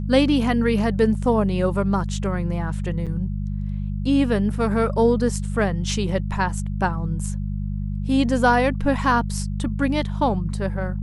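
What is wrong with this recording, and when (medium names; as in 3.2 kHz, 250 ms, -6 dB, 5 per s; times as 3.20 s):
hum 50 Hz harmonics 4 -26 dBFS
3.06–3.07 s: dropout 6.8 ms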